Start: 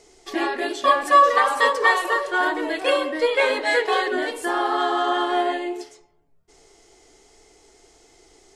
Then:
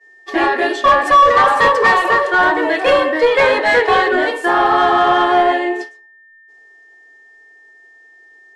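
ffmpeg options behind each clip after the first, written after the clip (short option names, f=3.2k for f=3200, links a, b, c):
-filter_complex "[0:a]aeval=exprs='val(0)+0.0141*sin(2*PI*1800*n/s)':c=same,agate=range=-33dB:threshold=-29dB:ratio=3:detection=peak,asplit=2[a][b];[b]highpass=f=720:p=1,volume=18dB,asoftclip=type=tanh:threshold=-3dB[c];[a][c]amix=inputs=2:normalize=0,lowpass=f=1.3k:p=1,volume=-6dB,volume=3dB"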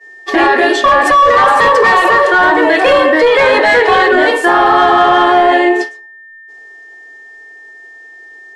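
-af "alimiter=level_in=11dB:limit=-1dB:release=50:level=0:latency=1,volume=-1dB"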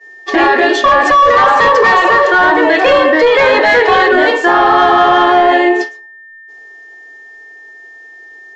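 -af "aresample=16000,aresample=44100"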